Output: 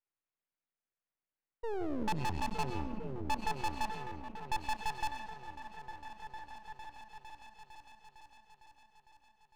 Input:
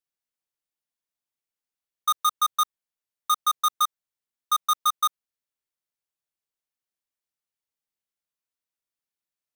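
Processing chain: painted sound fall, 1.63–2.63 s, 340–840 Hz -34 dBFS; mistuned SSB -360 Hz 440–2800 Hz; saturation -29 dBFS, distortion -7 dB; delay with an opening low-pass 455 ms, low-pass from 200 Hz, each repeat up 1 oct, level -3 dB; on a send at -9 dB: reverberation RT60 1.1 s, pre-delay 55 ms; on the sum: half-wave rectifier; trim +3.5 dB

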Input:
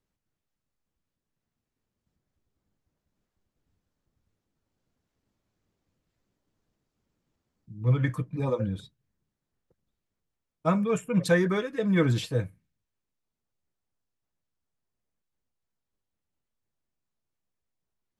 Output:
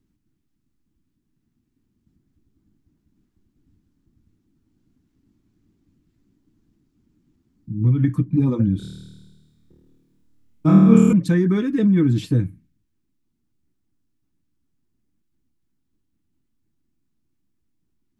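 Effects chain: resonant low shelf 400 Hz +10 dB, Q 3; compression 6:1, threshold -18 dBFS, peak gain reduction 11 dB; 8.77–11.13 s: flutter echo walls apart 4.5 m, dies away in 1.4 s; trim +3.5 dB

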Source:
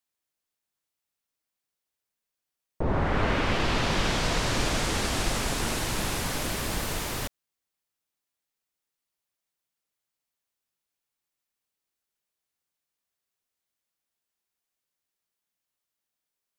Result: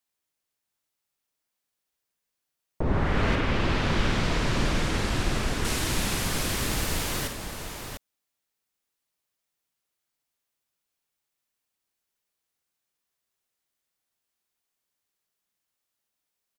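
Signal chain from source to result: 3.35–5.65 s: treble shelf 3.7 kHz -10.5 dB; multi-tap echo 52/697 ms -7.5/-7.5 dB; dynamic bell 740 Hz, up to -5 dB, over -37 dBFS, Q 0.89; trim +1.5 dB

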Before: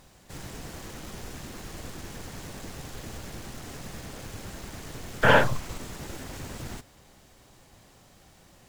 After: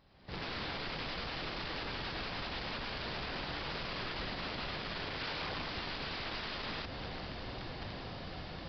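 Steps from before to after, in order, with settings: single-diode clipper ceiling -19.5 dBFS; Doppler pass-by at 2.79 s, 16 m/s, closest 2.7 m; recorder AGC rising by 36 dB/s; in parallel at -1.5 dB: peak limiter -31.5 dBFS, peak gain reduction 10.5 dB; on the sum: compression 6:1, threshold -35 dBFS, peak gain reduction 8 dB; short-mantissa float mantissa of 2-bit; integer overflow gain 40 dB; resampled via 11.025 kHz; trim +7.5 dB

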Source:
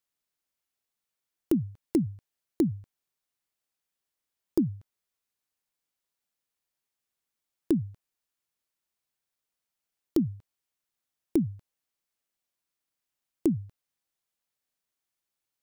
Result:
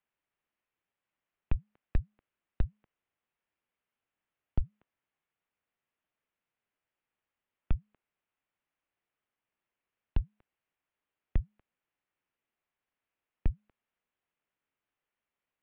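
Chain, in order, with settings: mistuned SSB -310 Hz 340–3200 Hz; trim +3 dB

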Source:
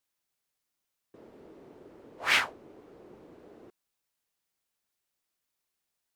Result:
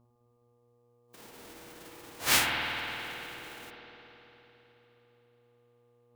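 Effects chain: formants flattened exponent 0.3; mains buzz 120 Hz, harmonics 10, -61 dBFS -6 dB/octave; spectral noise reduction 8 dB; spring tank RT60 3.6 s, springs 52 ms, chirp 60 ms, DRR -0.5 dB

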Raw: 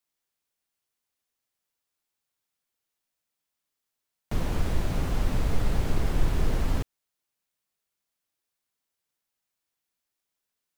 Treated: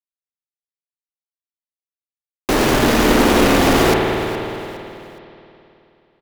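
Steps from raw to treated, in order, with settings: resonant low shelf 110 Hz -14 dB, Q 1.5; band-stop 4.8 kHz, Q 6.3; fuzz box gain 35 dB, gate -35 dBFS; speed mistake 45 rpm record played at 78 rpm; on a send: frequency-shifting echo 415 ms, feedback 37%, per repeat +36 Hz, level -15.5 dB; on the sum: spring tank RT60 2.9 s, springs 53 ms, chirp 50 ms, DRR 0 dB; trim +2.5 dB

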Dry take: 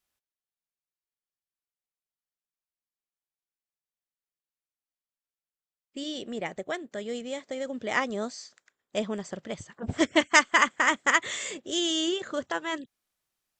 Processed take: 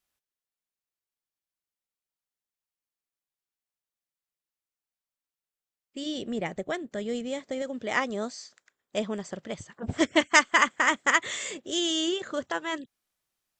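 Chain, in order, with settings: 6.06–7.62 s: bass shelf 230 Hz +9.5 dB

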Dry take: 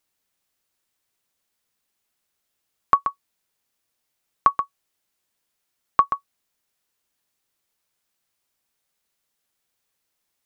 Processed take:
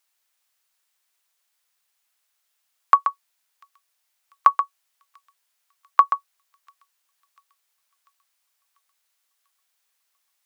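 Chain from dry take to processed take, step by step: high-pass 810 Hz 12 dB/octave; feedback echo behind a high-pass 693 ms, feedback 54%, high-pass 3.2 kHz, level -21.5 dB; trim +3.5 dB

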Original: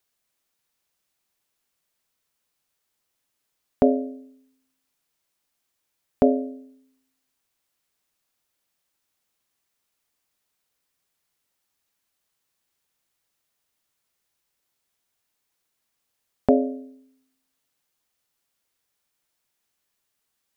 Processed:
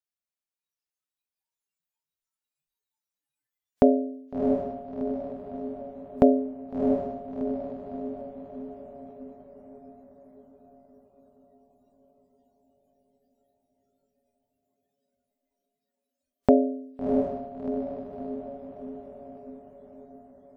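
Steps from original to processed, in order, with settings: echo that smears into a reverb 685 ms, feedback 58%, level -4.5 dB; spectral noise reduction 20 dB

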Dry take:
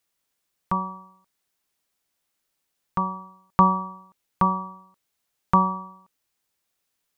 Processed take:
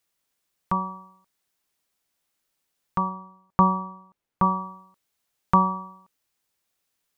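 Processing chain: 3.09–4.43 s: treble shelf 2.3 kHz -11.5 dB

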